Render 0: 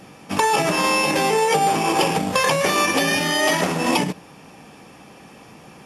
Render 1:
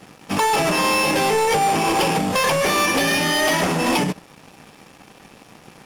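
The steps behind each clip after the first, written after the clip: waveshaping leveller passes 3; trim -7.5 dB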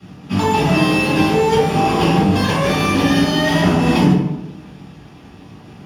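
reverberation RT60 0.90 s, pre-delay 3 ms, DRR -9 dB; trim -17.5 dB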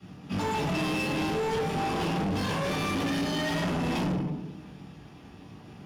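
saturation -17.5 dBFS, distortion -9 dB; trim -8 dB

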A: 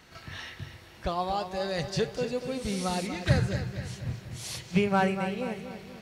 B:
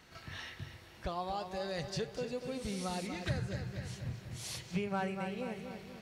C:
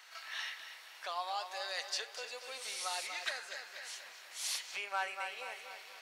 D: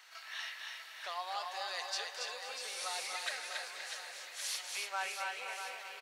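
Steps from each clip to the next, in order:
compression 2:1, threshold -32 dBFS, peak gain reduction 8.5 dB; trim -4.5 dB
Bessel high-pass 1.1 kHz, order 4; trim +6 dB
bass shelf 440 Hz -3 dB; on a send: reverse bouncing-ball echo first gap 280 ms, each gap 1.3×, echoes 5; on the sum: trim -1.5 dB

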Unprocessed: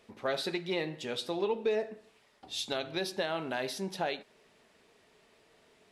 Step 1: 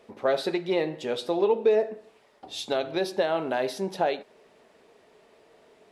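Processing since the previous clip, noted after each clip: peaking EQ 540 Hz +9.5 dB 2.4 oct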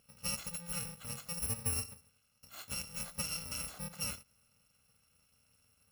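bit-reversed sample order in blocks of 128 samples; treble shelf 4.9 kHz -11.5 dB; trim -5.5 dB

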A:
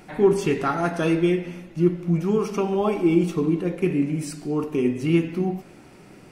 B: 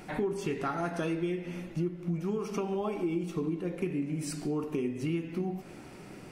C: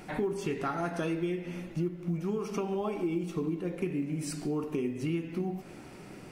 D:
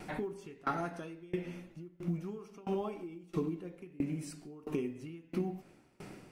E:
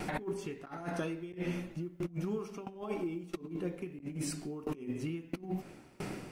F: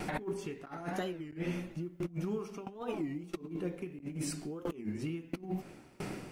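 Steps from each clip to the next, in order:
compression 5:1, threshold -30 dBFS, peak gain reduction 16 dB
short-mantissa float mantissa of 6-bit
sawtooth tremolo in dB decaying 1.5 Hz, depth 25 dB; trim +1.5 dB
compressor with a negative ratio -41 dBFS, ratio -0.5; trim +4.5 dB
warped record 33 1/3 rpm, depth 250 cents

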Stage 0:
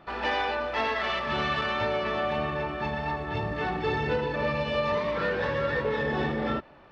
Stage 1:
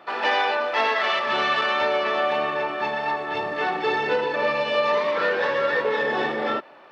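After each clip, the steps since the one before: high-pass 390 Hz 12 dB/octave; trim +6.5 dB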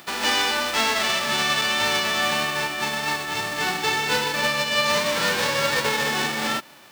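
formants flattened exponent 0.3; upward compressor, threshold -43 dBFS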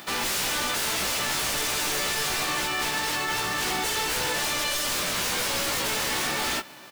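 wavefolder -25 dBFS; doubling 16 ms -5 dB; trim +1.5 dB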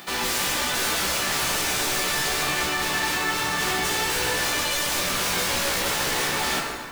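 plate-style reverb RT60 2.3 s, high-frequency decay 0.5×, DRR 0 dB

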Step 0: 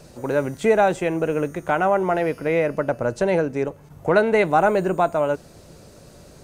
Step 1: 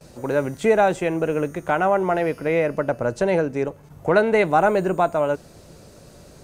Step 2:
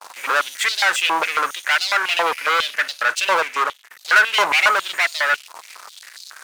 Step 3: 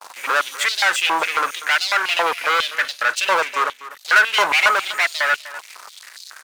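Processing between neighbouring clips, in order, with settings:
gate with hold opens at -39 dBFS
waveshaping leveller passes 5; step-sequenced high-pass 7.3 Hz 980–4200 Hz; trim -5 dB
delay 247 ms -16 dB

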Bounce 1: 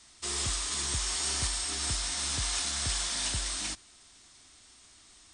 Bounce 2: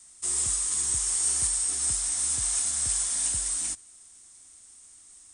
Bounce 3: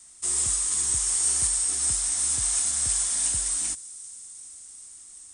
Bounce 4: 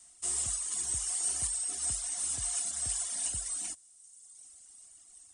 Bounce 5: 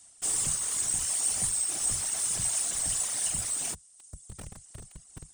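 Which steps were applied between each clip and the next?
resonant high shelf 6.2 kHz +13.5 dB, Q 1.5; trim -5.5 dB
feedback echo behind a high-pass 391 ms, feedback 77%, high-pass 5.2 kHz, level -19 dB; trim +2 dB
reverb removal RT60 1.5 s; small resonant body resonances 700/2900 Hz, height 8 dB, ringing for 25 ms; trim -6 dB
in parallel at -7 dB: Schmitt trigger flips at -45 dBFS; on the sum: whisper effect; trim +2 dB

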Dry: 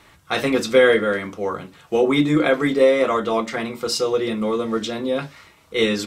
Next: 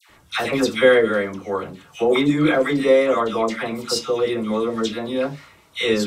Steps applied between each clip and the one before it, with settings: phase dispersion lows, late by 95 ms, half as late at 1.3 kHz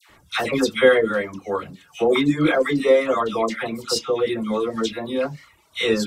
reverb removal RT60 0.65 s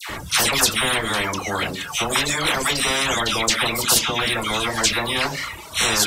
spectrum-flattening compressor 10:1

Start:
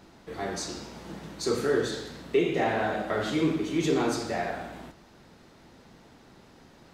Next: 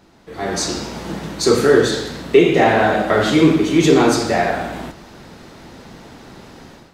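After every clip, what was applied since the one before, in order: level rider gain up to 13 dB; trim +1.5 dB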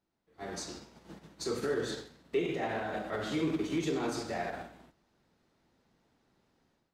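peak limiter -12 dBFS, peak gain reduction 10.5 dB; upward expansion 2.5:1, over -32 dBFS; trim -9 dB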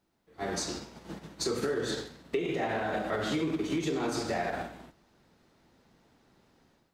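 compression 6:1, threshold -35 dBFS, peak gain reduction 9.5 dB; trim +7.5 dB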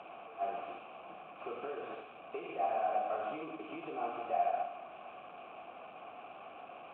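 one-bit delta coder 16 kbps, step -36.5 dBFS; vowel filter a; trim +5 dB

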